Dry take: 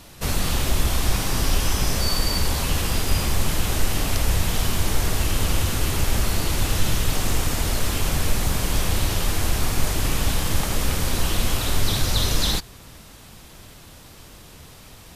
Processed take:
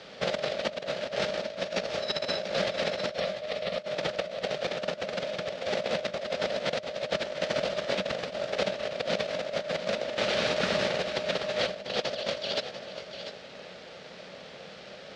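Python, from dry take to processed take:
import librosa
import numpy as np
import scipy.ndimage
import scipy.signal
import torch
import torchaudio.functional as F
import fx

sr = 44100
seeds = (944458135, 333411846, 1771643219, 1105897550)

y = fx.low_shelf(x, sr, hz=140.0, db=-7.0, at=(10.18, 10.9))
y = fx.over_compress(y, sr, threshold_db=-24.0, ratio=-0.5)
y = fx.fixed_phaser(y, sr, hz=1400.0, stages=8, at=(3.19, 3.77), fade=0.02)
y = y * np.sin(2.0 * np.pi * 610.0 * np.arange(len(y)) / sr)
y = fx.cabinet(y, sr, low_hz=100.0, low_slope=12, high_hz=4600.0, hz=(100.0, 190.0, 310.0, 710.0, 1000.0), db=(-8, 6, -8, -8, -9))
y = fx.echo_multitap(y, sr, ms=(692, 708), db=(-11.0, -17.0))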